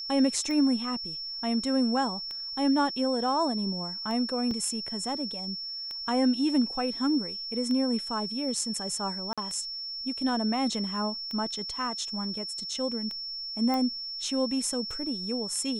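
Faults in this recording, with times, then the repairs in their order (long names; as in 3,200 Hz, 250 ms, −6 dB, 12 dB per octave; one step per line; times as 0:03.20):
scratch tick 33 1/3 rpm −24 dBFS
whistle 5,400 Hz −34 dBFS
0:04.51: drop-out 2.9 ms
0:09.33–0:09.38: drop-out 46 ms
0:13.74: click −18 dBFS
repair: click removal
notch filter 5,400 Hz, Q 30
repair the gap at 0:04.51, 2.9 ms
repair the gap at 0:09.33, 46 ms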